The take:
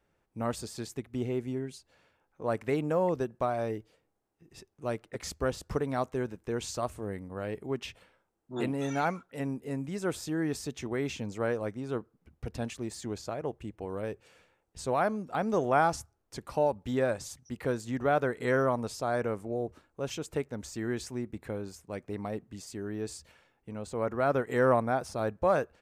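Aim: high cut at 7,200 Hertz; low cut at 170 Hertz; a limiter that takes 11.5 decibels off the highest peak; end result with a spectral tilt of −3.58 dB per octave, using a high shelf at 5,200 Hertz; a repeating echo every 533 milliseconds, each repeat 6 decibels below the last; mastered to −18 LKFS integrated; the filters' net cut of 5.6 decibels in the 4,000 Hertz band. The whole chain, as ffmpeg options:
ffmpeg -i in.wav -af "highpass=170,lowpass=7200,equalizer=frequency=4000:width_type=o:gain=-4.5,highshelf=frequency=5200:gain=-5,alimiter=limit=-23dB:level=0:latency=1,aecho=1:1:533|1066|1599|2132|2665|3198:0.501|0.251|0.125|0.0626|0.0313|0.0157,volume=18dB" out.wav

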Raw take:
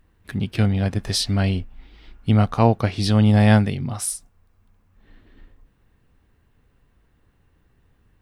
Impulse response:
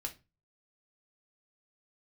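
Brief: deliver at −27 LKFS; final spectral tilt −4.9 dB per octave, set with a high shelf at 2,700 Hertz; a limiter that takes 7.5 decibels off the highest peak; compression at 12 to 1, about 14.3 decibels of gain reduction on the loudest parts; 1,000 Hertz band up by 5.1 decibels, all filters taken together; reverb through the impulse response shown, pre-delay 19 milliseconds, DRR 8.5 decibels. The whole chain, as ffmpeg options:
-filter_complex "[0:a]equalizer=frequency=1000:width_type=o:gain=6.5,highshelf=frequency=2700:gain=3,acompressor=threshold=-23dB:ratio=12,alimiter=limit=-21dB:level=0:latency=1,asplit=2[link_01][link_02];[1:a]atrim=start_sample=2205,adelay=19[link_03];[link_02][link_03]afir=irnorm=-1:irlink=0,volume=-8dB[link_04];[link_01][link_04]amix=inputs=2:normalize=0,volume=3.5dB"

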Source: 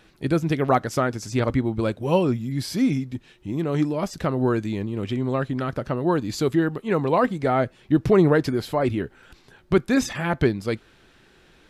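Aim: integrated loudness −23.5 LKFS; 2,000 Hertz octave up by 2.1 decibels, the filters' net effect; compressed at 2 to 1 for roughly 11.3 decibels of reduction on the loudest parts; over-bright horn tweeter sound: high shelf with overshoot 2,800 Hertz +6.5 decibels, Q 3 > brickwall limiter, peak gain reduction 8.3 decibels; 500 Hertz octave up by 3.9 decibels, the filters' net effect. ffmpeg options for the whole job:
ffmpeg -i in.wav -af "equalizer=frequency=500:width_type=o:gain=5,equalizer=frequency=2000:width_type=o:gain=6.5,acompressor=threshold=-31dB:ratio=2,highshelf=frequency=2800:width_type=q:width=3:gain=6.5,volume=8dB,alimiter=limit=-13.5dB:level=0:latency=1" out.wav

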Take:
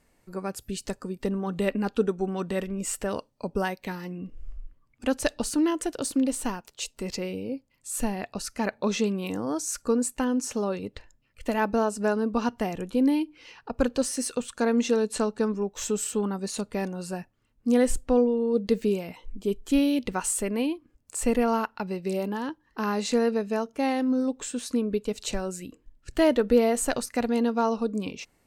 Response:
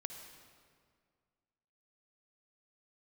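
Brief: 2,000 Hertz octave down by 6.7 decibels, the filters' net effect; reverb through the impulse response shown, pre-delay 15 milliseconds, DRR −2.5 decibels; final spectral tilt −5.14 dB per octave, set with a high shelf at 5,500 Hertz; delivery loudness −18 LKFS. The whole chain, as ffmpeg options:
-filter_complex "[0:a]equalizer=frequency=2000:width_type=o:gain=-8.5,highshelf=frequency=5500:gain=-6,asplit=2[link_01][link_02];[1:a]atrim=start_sample=2205,adelay=15[link_03];[link_02][link_03]afir=irnorm=-1:irlink=0,volume=5dB[link_04];[link_01][link_04]amix=inputs=2:normalize=0,volume=5.5dB"

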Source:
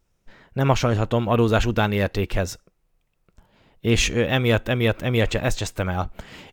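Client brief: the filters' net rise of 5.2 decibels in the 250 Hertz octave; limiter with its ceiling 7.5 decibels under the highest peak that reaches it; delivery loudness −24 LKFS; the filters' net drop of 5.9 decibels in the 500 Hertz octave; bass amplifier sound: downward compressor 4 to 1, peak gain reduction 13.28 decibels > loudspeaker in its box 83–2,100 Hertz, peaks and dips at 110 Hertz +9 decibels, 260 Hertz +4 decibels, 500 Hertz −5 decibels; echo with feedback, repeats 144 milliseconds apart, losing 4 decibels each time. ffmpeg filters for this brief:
ffmpeg -i in.wav -af "equalizer=frequency=250:width_type=o:gain=5,equalizer=frequency=500:width_type=o:gain=-6.5,alimiter=limit=-11.5dB:level=0:latency=1,aecho=1:1:144|288|432|576|720|864|1008|1152|1296:0.631|0.398|0.25|0.158|0.0994|0.0626|0.0394|0.0249|0.0157,acompressor=threshold=-29dB:ratio=4,highpass=frequency=83:width=0.5412,highpass=frequency=83:width=1.3066,equalizer=frequency=110:width_type=q:width=4:gain=9,equalizer=frequency=260:width_type=q:width=4:gain=4,equalizer=frequency=500:width_type=q:width=4:gain=-5,lowpass=frequency=2100:width=0.5412,lowpass=frequency=2100:width=1.3066,volume=5.5dB" out.wav

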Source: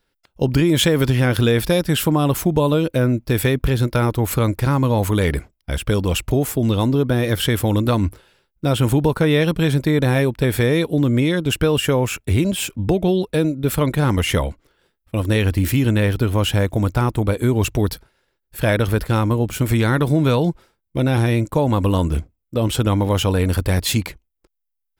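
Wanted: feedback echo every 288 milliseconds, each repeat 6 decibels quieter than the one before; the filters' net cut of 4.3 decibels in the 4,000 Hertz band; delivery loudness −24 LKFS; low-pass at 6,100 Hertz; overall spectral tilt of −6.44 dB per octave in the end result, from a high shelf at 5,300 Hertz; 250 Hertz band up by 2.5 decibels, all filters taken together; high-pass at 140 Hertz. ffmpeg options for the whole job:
ffmpeg -i in.wav -af "highpass=140,lowpass=6100,equalizer=frequency=250:width_type=o:gain=4,equalizer=frequency=4000:width_type=o:gain=-8.5,highshelf=frequency=5300:gain=7.5,aecho=1:1:288|576|864|1152|1440|1728:0.501|0.251|0.125|0.0626|0.0313|0.0157,volume=-6dB" out.wav

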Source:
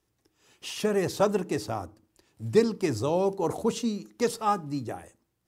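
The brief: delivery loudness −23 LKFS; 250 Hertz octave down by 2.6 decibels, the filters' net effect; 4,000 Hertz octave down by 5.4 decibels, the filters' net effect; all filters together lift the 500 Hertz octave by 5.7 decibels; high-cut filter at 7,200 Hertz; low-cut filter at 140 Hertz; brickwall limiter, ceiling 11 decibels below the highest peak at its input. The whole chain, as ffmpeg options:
ffmpeg -i in.wav -af "highpass=140,lowpass=7200,equalizer=frequency=250:width_type=o:gain=-6.5,equalizer=frequency=500:width_type=o:gain=9,equalizer=frequency=4000:width_type=o:gain=-7,volume=5dB,alimiter=limit=-11dB:level=0:latency=1" out.wav

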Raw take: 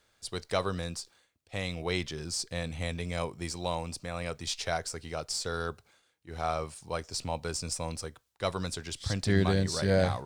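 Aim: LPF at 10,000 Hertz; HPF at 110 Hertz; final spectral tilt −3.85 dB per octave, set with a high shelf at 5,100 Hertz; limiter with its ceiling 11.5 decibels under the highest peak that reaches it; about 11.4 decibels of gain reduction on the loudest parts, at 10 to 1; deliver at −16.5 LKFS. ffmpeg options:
ffmpeg -i in.wav -af "highpass=110,lowpass=10000,highshelf=frequency=5100:gain=-4.5,acompressor=threshold=-32dB:ratio=10,volume=25.5dB,alimiter=limit=-4.5dB:level=0:latency=1" out.wav

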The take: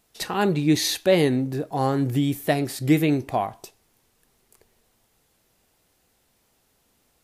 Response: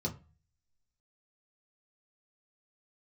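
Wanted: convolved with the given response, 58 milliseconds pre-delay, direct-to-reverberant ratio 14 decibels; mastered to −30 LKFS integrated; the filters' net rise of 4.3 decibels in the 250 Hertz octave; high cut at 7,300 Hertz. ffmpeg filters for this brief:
-filter_complex "[0:a]lowpass=7300,equalizer=frequency=250:width_type=o:gain=5.5,asplit=2[link_01][link_02];[1:a]atrim=start_sample=2205,adelay=58[link_03];[link_02][link_03]afir=irnorm=-1:irlink=0,volume=-16.5dB[link_04];[link_01][link_04]amix=inputs=2:normalize=0,volume=-11dB"

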